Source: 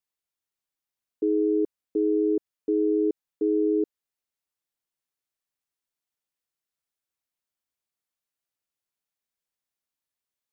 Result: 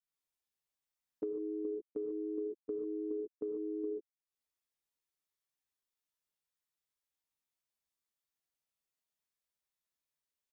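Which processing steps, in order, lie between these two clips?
doubling 14 ms -5 dB; gate -26 dBFS, range -17 dB; gated-style reverb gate 160 ms rising, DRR -3 dB; compression 6:1, threshold -46 dBFS, peak gain reduction 26.5 dB; trim +7 dB

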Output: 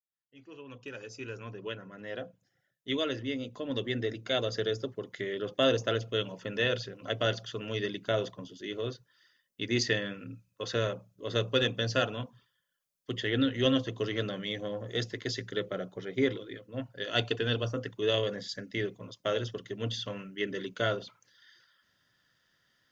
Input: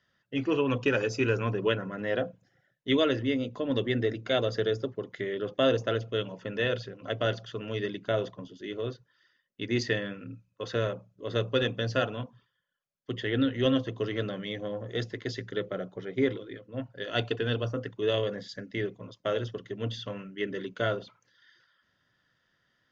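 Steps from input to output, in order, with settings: fade-in on the opening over 5.94 s; treble shelf 4.1 kHz +11.5 dB; trim -1.5 dB

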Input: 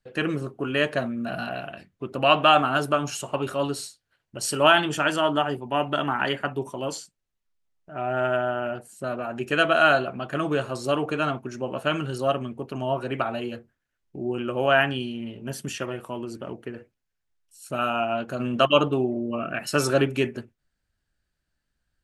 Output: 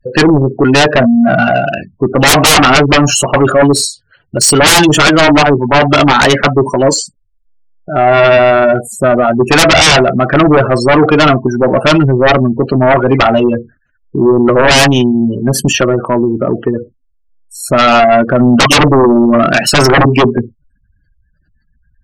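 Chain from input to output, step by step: spectral gate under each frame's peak -15 dB strong; sine folder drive 18 dB, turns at -4.5 dBFS; trim +1.5 dB

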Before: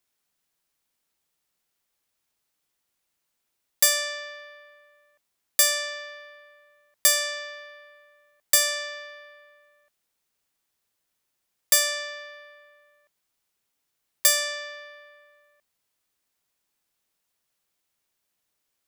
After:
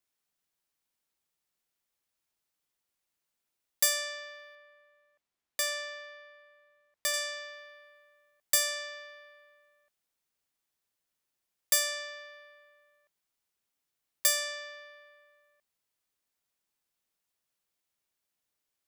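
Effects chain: 4.55–7.14 s: treble shelf 6.1 kHz -10.5 dB; trim -6.5 dB

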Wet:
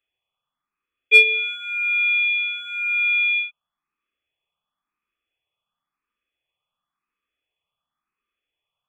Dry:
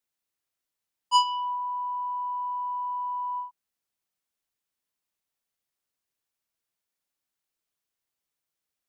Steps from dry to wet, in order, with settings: partial rectifier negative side -7 dB; small resonant body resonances 880/2200 Hz, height 14 dB, ringing for 30 ms; frequency inversion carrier 3.4 kHz; saturation -11.5 dBFS, distortion -20 dB; barber-pole phaser +0.95 Hz; trim +9 dB

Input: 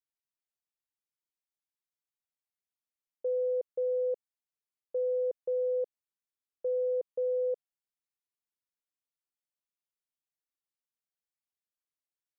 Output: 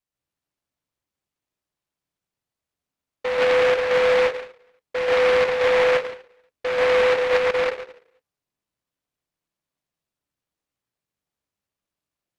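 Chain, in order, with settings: 7.08–7.51 s: low-pass that closes with the level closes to 510 Hz, closed at -27.5 dBFS; reverberation RT60 0.70 s, pre-delay 129 ms, DRR -7 dB; delay time shaken by noise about 1.4 kHz, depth 0.15 ms

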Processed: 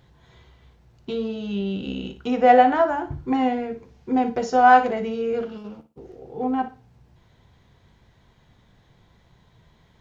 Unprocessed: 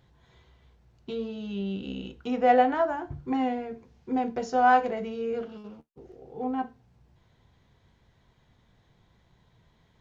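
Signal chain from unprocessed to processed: flutter echo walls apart 10 m, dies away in 0.28 s; trim +6 dB

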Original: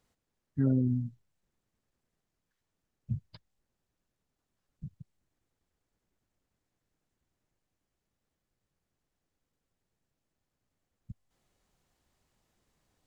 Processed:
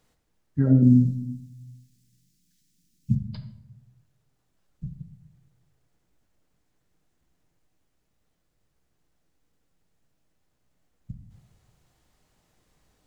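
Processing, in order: 0.82–3.15 s: FFT filter 110 Hz 0 dB, 190 Hz +12 dB, 310 Hz +2 dB, 700 Hz -29 dB, 1.9 kHz -3 dB, 5.3 kHz +12 dB; simulated room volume 170 m³, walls mixed, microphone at 0.49 m; trim +6.5 dB

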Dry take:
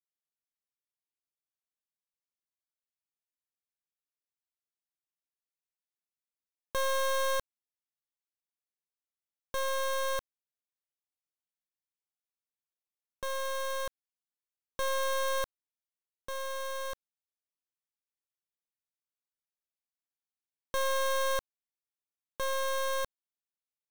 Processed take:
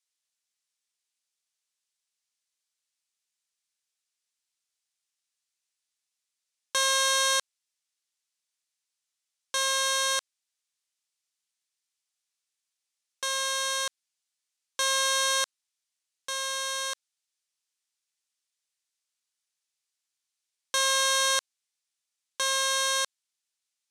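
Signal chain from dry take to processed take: frequency weighting ITU-R 468; trim +3 dB

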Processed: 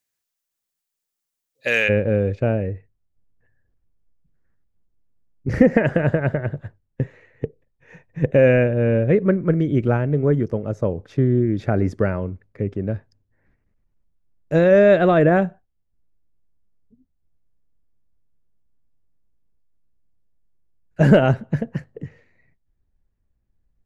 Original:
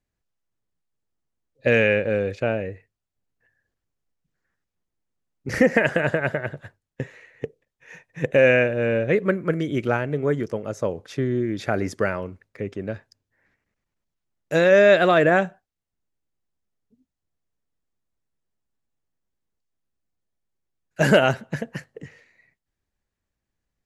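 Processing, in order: tilt EQ +4 dB/octave, from 1.88 s -3.5 dB/octave; trim -1.5 dB

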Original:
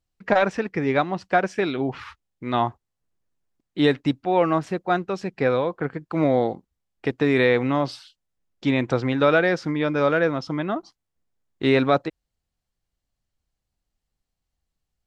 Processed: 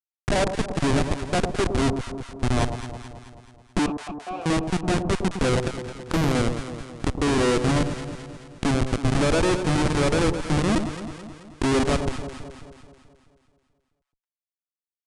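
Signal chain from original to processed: recorder AGC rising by 23 dB/s; harmonic-percussive split percussive -4 dB; dynamic bell 350 Hz, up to +3 dB, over -31 dBFS, Q 2.6; Schmitt trigger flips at -19 dBFS; 3.86–4.46 s: vowel filter a; on a send: echo whose repeats swap between lows and highs 108 ms, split 950 Hz, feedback 73%, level -7 dB; on the sum: resampled via 22.05 kHz; 5.77–6.33 s: loudspeaker Doppler distortion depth 0.41 ms; trim +3 dB

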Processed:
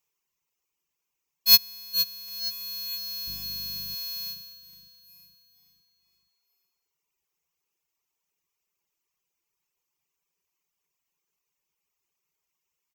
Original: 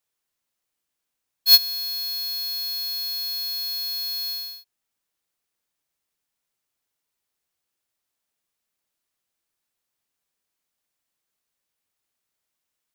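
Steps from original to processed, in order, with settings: 3.26–3.94 s: mains buzz 50 Hz, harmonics 6, -45 dBFS -5 dB/octave; rippled EQ curve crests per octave 0.76, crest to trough 9 dB; feedback delay 466 ms, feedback 45%, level -11 dB; reverb removal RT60 1.3 s

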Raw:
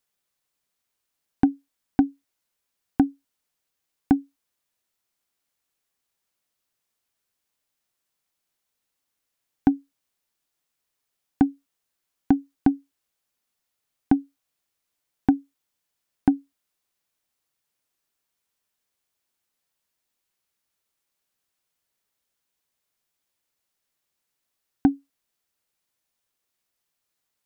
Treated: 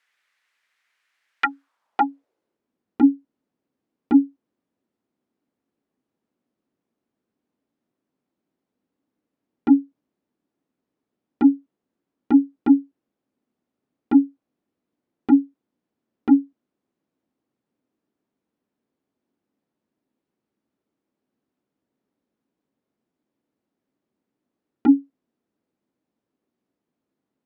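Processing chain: sine folder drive 16 dB, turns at -6.5 dBFS; band-pass sweep 1.9 kHz -> 260 Hz, 1.38–2.66 s

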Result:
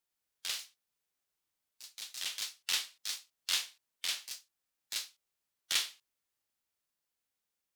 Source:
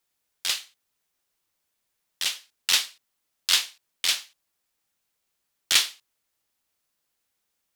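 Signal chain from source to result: harmonic-percussive split percussive -5 dB; ever faster or slower copies 121 ms, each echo +3 st, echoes 2, each echo -6 dB; trim -7.5 dB

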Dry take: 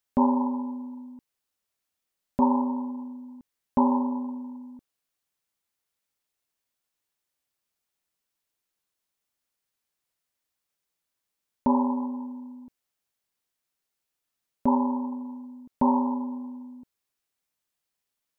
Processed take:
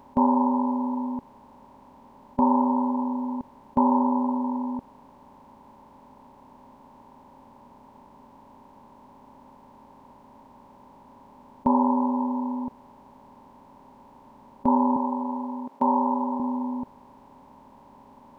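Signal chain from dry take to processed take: spectral levelling over time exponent 0.4; 14.96–16.40 s: high-pass 270 Hz; trim -1 dB

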